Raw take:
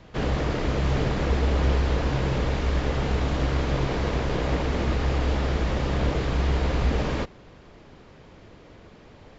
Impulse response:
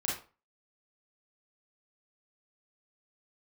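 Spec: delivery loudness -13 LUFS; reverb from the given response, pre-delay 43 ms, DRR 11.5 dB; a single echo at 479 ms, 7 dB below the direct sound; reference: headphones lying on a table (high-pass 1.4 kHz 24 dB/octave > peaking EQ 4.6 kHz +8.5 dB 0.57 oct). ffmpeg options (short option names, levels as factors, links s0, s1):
-filter_complex "[0:a]aecho=1:1:479:0.447,asplit=2[s0][s1];[1:a]atrim=start_sample=2205,adelay=43[s2];[s1][s2]afir=irnorm=-1:irlink=0,volume=0.15[s3];[s0][s3]amix=inputs=2:normalize=0,highpass=f=1400:w=0.5412,highpass=f=1400:w=1.3066,equalizer=f=4600:t=o:w=0.57:g=8.5,volume=10.6"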